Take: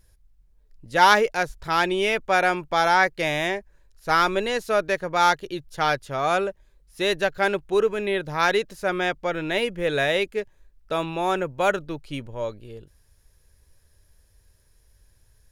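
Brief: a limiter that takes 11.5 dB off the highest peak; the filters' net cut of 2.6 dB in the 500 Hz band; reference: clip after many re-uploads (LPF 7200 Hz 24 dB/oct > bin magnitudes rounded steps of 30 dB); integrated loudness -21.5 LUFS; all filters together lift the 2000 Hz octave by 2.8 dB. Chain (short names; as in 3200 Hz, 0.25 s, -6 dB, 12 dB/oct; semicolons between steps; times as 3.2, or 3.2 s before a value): bell 500 Hz -3.5 dB; bell 2000 Hz +4 dB; limiter -13.5 dBFS; LPF 7200 Hz 24 dB/oct; bin magnitudes rounded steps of 30 dB; gain +5 dB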